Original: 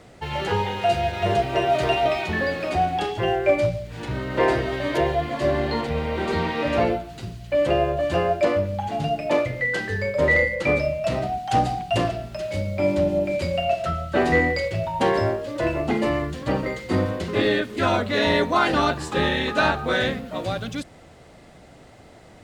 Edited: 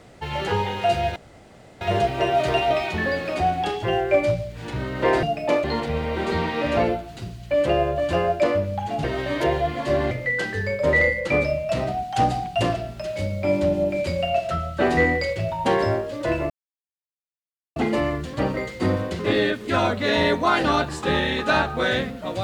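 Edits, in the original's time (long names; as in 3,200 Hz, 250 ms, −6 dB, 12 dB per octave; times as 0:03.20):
0:01.16: splice in room tone 0.65 s
0:04.58–0:05.65: swap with 0:09.05–0:09.46
0:15.85: splice in silence 1.26 s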